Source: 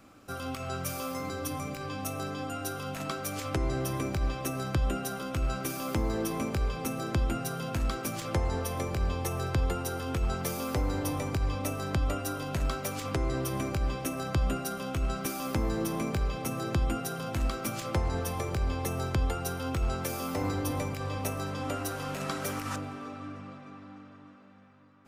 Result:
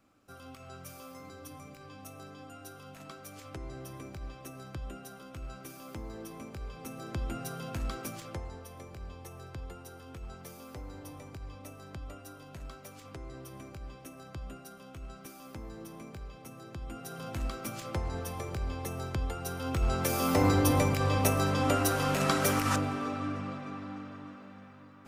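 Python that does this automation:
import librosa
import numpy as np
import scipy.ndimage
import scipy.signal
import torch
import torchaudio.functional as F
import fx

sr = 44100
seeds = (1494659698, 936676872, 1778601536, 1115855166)

y = fx.gain(x, sr, db=fx.line((6.55, -12.5), (7.44, -5.0), (8.04, -5.0), (8.59, -14.5), (16.78, -14.5), (17.23, -5.0), (19.35, -5.0), (20.32, 6.5)))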